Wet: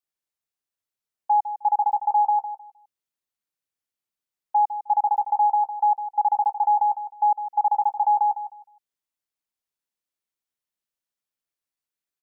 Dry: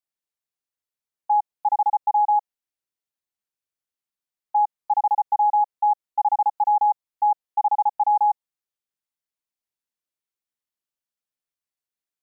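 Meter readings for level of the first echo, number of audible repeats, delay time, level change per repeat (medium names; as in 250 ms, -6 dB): -11.5 dB, 2, 155 ms, -13.0 dB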